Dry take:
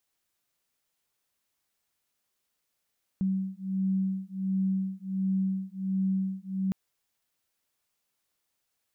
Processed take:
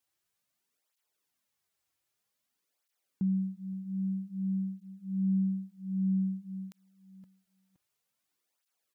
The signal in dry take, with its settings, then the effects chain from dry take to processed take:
beating tones 190 Hz, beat 1.4 Hz, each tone -29.5 dBFS 3.51 s
feedback echo 0.518 s, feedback 34%, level -23.5 dB; tape flanging out of phase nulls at 0.52 Hz, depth 5 ms

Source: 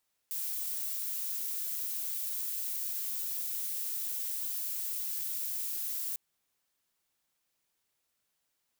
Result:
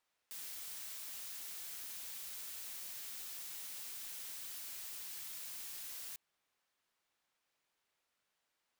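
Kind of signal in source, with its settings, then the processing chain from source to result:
noise violet, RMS -35.5 dBFS 5.85 s
overdrive pedal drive 7 dB, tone 2200 Hz, clips at -21.5 dBFS

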